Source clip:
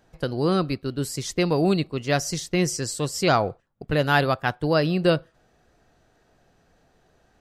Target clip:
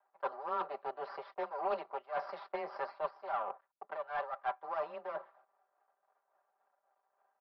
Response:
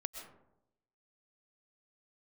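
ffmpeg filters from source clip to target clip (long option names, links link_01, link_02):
-af "agate=range=-13dB:threshold=-53dB:ratio=16:detection=peak,aresample=11025,aeval=exprs='max(val(0),0)':channel_layout=same,aresample=44100,afreqshift=18,asuperpass=centerf=890:order=4:qfactor=1.3,aemphasis=mode=production:type=bsi,areverse,acompressor=threshold=-43dB:ratio=20,areverse,tremolo=f=3.6:d=0.48,aeval=exprs='0.0178*(cos(1*acos(clip(val(0)/0.0178,-1,1)))-cos(1*PI/2))+0.00178*(cos(3*acos(clip(val(0)/0.0178,-1,1)))-cos(3*PI/2))':channel_layout=same,aecho=1:1:5.1:0.83,volume=11.5dB"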